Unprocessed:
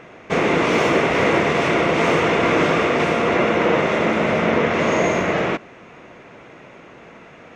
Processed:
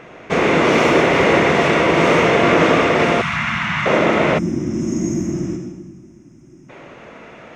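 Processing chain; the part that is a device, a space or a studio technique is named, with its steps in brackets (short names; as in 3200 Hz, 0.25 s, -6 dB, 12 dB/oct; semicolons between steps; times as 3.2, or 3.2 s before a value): bathroom (reverb RT60 1.1 s, pre-delay 62 ms, DRR 3.5 dB); 3.21–3.86 Chebyshev band-stop 150–1300 Hz, order 2; 4.38–6.69 spectral gain 370–5000 Hz -25 dB; gain +2 dB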